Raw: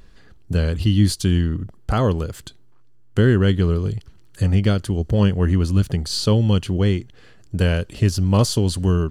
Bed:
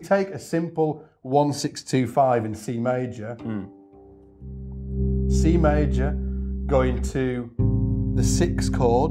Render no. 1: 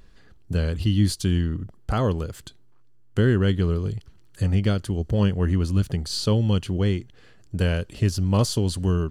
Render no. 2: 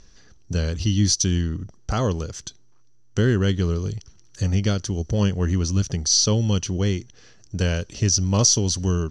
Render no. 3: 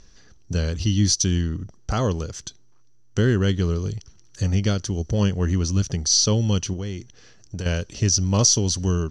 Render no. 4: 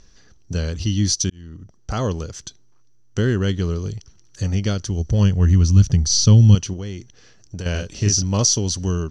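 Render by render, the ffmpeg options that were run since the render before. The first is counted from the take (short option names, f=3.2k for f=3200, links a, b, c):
-af "volume=-4dB"
-af "lowpass=f=5.9k:t=q:w=14"
-filter_complex "[0:a]asettb=1/sr,asplit=3[a][b][c];[a]atrim=end=6.734[d];[b]atrim=start=6.73:end=7.66,asetpts=PTS-STARTPTS,afade=t=in:d=0.004:c=qsin,afade=t=out:st=0.926:d=0.004:c=qsin,acompressor=threshold=-26dB:ratio=5:attack=3.2:release=140:knee=1:detection=peak[e];[c]atrim=start=7.656[f];[d][e]acrossfade=d=0.004:c1=hsin:c2=qsin[g];[g][f]acrossfade=d=0.004:c1=qsin:c2=hsin"
-filter_complex "[0:a]asettb=1/sr,asplit=3[a][b][c];[a]atrim=end=4.704[d];[b]atrim=start=4.7:end=6.55,asetpts=PTS-STARTPTS,afade=t=in:d=0.004:c=qsin,afade=t=out:st=1.846:d=0.004:c=qsin,asubboost=boost=8.5:cutoff=210[e];[c]atrim=start=6.546[f];[d][e]acrossfade=d=0.004:c1=hsin:c2=qsin[g];[g][f]acrossfade=d=0.004:c1=qsin:c2=hsin,asettb=1/sr,asplit=3[h][i][j];[h]atrim=end=7.714[k];[i]atrim=start=7.71:end=8.23,asetpts=PTS-STARTPTS,afade=t=in:d=0.004:c=qsin,afade=t=out:st=0.516:d=0.004:c=qsin,asplit=2[l][m];[m]adelay=39,volume=-4dB[n];[l][n]amix=inputs=2:normalize=0,atrim=end_sample=22932[o];[j]atrim=start=8.226[p];[k][o]acrossfade=d=0.004:c1=hsin:c2=qsin[q];[q][p]acrossfade=d=0.004:c1=qsin:c2=hsin,asplit=2[r][s];[r]atrim=end=1.3,asetpts=PTS-STARTPTS,afade=t=out:st=1.296:d=0.004:c=hsin[t];[s]atrim=start=1.3,asetpts=PTS-STARTPTS,afade=t=in:d=0.72[u];[t][u]concat=n=2:v=0:a=1"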